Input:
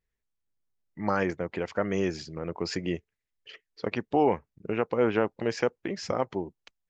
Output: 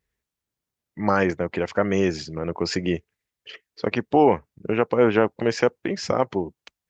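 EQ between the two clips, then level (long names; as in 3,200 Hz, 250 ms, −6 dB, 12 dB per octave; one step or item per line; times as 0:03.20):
high-pass filter 46 Hz
+6.5 dB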